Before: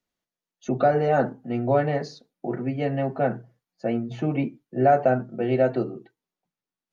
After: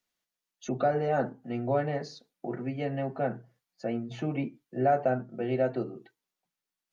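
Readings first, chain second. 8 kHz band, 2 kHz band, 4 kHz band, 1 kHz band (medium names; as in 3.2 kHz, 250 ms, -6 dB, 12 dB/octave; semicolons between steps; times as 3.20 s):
no reading, -6.0 dB, -3.5 dB, -6.5 dB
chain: tape noise reduction on one side only encoder only; trim -6.5 dB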